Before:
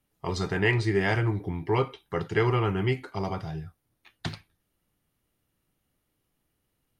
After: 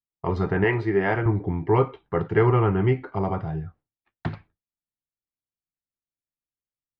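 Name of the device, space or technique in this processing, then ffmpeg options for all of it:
hearing-loss simulation: -filter_complex "[0:a]asettb=1/sr,asplit=3[link_01][link_02][link_03];[link_01]atrim=end=0.644[link_04];[link_02]atrim=start=0.64:end=1.26,asetpts=PTS-STARTPTS,afade=type=in:duration=0.004:curve=qsin,afade=type=out:start_time=0.616:duration=0.004:curve=qsin,highpass=frequency=250:poles=1[link_05];[link_03]atrim=start=1.256[link_06];[link_04][link_05]acrossfade=duration=0.004:curve1=hsin:curve2=qsin[link_07];[link_07][link_06]acrossfade=duration=0.004:curve1=qsin:curve2=hsin,lowpass=1500,agate=range=-33dB:threshold=-50dB:ratio=3:detection=peak,volume=5.5dB"

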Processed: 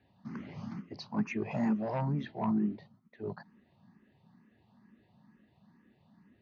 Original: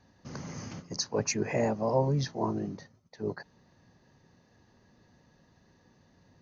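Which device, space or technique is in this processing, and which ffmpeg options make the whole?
barber-pole phaser into a guitar amplifier: -filter_complex "[0:a]asettb=1/sr,asplit=3[link_01][link_02][link_03];[link_01]atrim=end=1.514[link_04];[link_02]atrim=start=1.51:end=2.02,asetpts=PTS-STARTPTS,afade=type=in:duration=0.004:curve=qsin,afade=type=out:start_time=0.506:duration=0.004:curve=qsin,aemphasis=mode=production:type=75fm[link_05];[link_03]atrim=start=2.016[link_06];[link_04][link_05]acrossfade=duration=0.004:curve1=hsin:curve2=qsin[link_07];[link_07][link_06]acrossfade=duration=0.004:curve1=qsin:curve2=hsin,asplit=2[link_08][link_09];[link_09]afreqshift=2.2[link_10];[link_08][link_10]amix=inputs=2:normalize=1,asoftclip=type=tanh:threshold=-23.5dB,highpass=83,equalizer=frequency=91:width_type=q:width=4:gain=-4,equalizer=frequency=210:width_type=q:width=4:gain=10,equalizer=frequency=500:width_type=q:width=4:gain=-9,equalizer=frequency=1600:width_type=q:width=4:gain=-3,lowpass=frequency=3500:width=0.5412,lowpass=frequency=3500:width=1.3066"

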